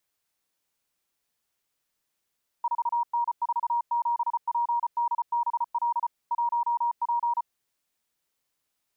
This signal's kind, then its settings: Morse "4N47PDBL 1P" 34 wpm 947 Hz -22.5 dBFS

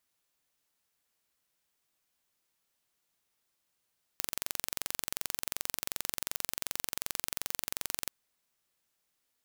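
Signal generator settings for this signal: pulse train 22.7 per s, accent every 0, -5.5 dBFS 3.88 s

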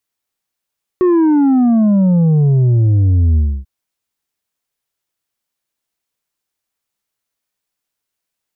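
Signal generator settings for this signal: sub drop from 370 Hz, over 2.64 s, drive 5 dB, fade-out 0.28 s, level -9 dB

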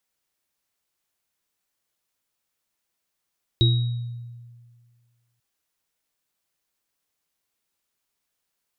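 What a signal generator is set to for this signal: sine partials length 1.79 s, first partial 119 Hz, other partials 339/3810 Hz, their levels -7.5/-5 dB, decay 1.81 s, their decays 0.40/0.71 s, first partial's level -14 dB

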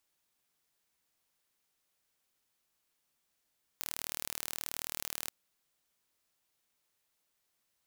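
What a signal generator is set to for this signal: pulse train 38.7 per s, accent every 0, -10 dBFS 1.48 s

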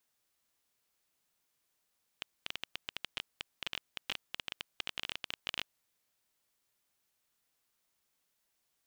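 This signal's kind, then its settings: random clicks 15 per s -18.5 dBFS 3.47 s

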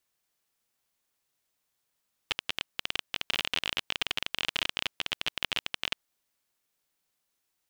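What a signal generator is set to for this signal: random clicks 26 per s -11 dBFS 3.79 s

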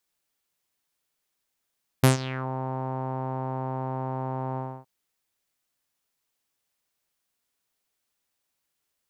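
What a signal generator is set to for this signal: synth note saw C3 12 dB/octave, low-pass 890 Hz, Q 4.1, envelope 4 oct, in 0.43 s, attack 9.5 ms, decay 0.13 s, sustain -18 dB, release 0.28 s, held 2.54 s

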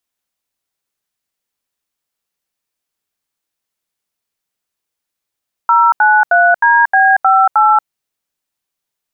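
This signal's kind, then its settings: DTMF "093DB58", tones 232 ms, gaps 79 ms, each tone -9 dBFS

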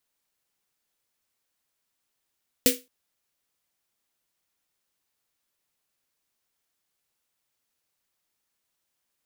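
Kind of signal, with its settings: snare drum length 0.22 s, tones 260 Hz, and 490 Hz, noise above 1.9 kHz, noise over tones 2.5 dB, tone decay 0.23 s, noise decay 0.23 s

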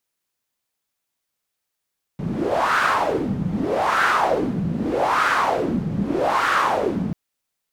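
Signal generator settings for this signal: wind-like swept noise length 4.94 s, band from 170 Hz, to 1.4 kHz, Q 3.7, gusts 4, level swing 6 dB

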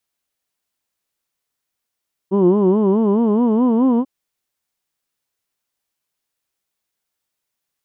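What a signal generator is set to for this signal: formant vowel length 1.74 s, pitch 185 Hz, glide +5.5 st, vibrato 4.7 Hz, vibrato depth 1.4 st, F1 340 Hz, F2 1 kHz, F3 3 kHz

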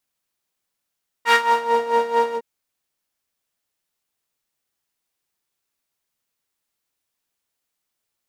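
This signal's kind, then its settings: synth patch with tremolo A#4, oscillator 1 saw, interval +12 st, detune 8 cents, oscillator 2 level -1 dB, sub -16 dB, noise -5 dB, filter bandpass, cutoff 310 Hz, Q 1.4, filter envelope 2.5 oct, filter decay 0.48 s, filter sustain 40%, attack 108 ms, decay 0.07 s, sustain -10 dB, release 0.06 s, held 1.10 s, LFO 4.5 Hz, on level 11 dB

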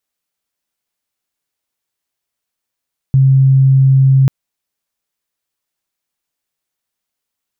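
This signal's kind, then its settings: tone sine 134 Hz -5.5 dBFS 1.14 s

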